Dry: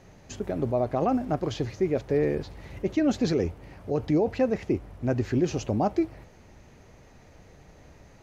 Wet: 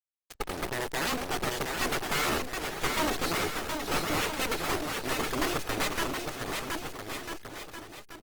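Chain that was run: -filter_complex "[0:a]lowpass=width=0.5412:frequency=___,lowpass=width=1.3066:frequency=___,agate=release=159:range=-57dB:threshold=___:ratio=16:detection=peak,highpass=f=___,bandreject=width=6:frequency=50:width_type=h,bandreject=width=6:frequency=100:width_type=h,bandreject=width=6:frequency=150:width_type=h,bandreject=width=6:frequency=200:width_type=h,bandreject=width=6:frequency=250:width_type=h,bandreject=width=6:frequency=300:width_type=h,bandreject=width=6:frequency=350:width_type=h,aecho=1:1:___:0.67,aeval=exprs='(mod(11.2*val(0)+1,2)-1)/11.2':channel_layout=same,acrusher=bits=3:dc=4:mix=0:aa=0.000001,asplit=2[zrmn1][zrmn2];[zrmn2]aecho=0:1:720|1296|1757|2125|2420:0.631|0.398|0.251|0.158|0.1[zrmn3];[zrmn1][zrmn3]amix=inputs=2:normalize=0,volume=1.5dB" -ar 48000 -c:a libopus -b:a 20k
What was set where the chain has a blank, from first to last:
5400, 5400, -49dB, 250, 2.4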